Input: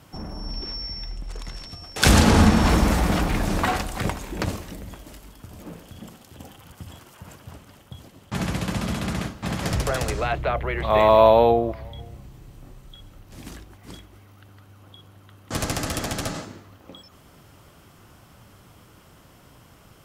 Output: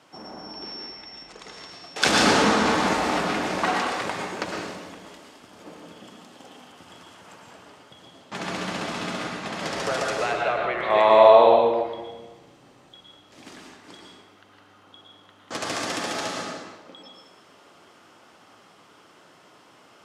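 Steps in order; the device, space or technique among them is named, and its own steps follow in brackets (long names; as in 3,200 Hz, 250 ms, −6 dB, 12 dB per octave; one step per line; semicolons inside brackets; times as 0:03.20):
supermarket ceiling speaker (band-pass filter 330–6,600 Hz; convolution reverb RT60 1.1 s, pre-delay 100 ms, DRR −0.5 dB)
level −1 dB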